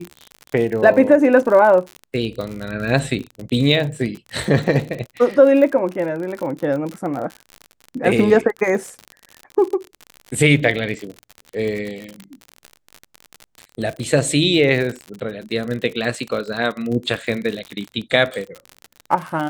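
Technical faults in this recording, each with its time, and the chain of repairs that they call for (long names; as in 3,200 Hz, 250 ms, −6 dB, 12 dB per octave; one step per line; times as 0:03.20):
surface crackle 56 per second −25 dBFS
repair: click removal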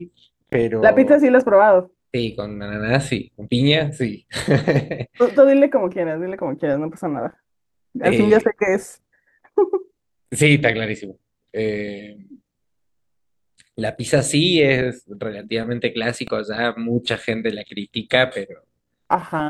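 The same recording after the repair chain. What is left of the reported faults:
none of them is left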